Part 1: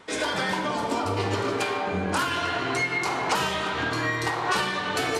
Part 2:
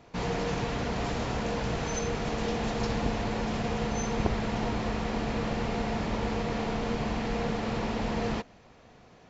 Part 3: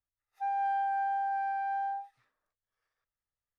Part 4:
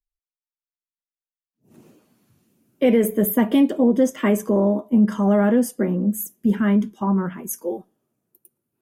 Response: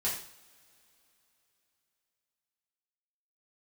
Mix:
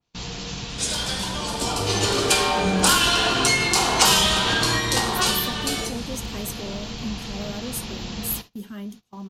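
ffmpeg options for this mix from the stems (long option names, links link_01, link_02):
-filter_complex "[0:a]dynaudnorm=framelen=330:gausssize=7:maxgain=14dB,adelay=700,volume=-10dB,asplit=2[link_01][link_02];[link_02]volume=-7.5dB[link_03];[1:a]lowpass=frequency=2800:poles=1,equalizer=frequency=540:width_type=o:width=1.7:gain=-9,volume=-2dB,asplit=2[link_04][link_05];[link_05]volume=-15.5dB[link_06];[3:a]adelay=2100,volume=-17dB[link_07];[4:a]atrim=start_sample=2205[link_08];[link_03][link_06]amix=inputs=2:normalize=0[link_09];[link_09][link_08]afir=irnorm=-1:irlink=0[link_10];[link_01][link_04][link_07][link_10]amix=inputs=4:normalize=0,agate=range=-20dB:threshold=-42dB:ratio=16:detection=peak,aexciter=amount=5.4:drive=5.9:freq=2900,adynamicequalizer=threshold=0.0251:dfrequency=2700:dqfactor=0.7:tfrequency=2700:tqfactor=0.7:attack=5:release=100:ratio=0.375:range=2.5:mode=cutabove:tftype=highshelf"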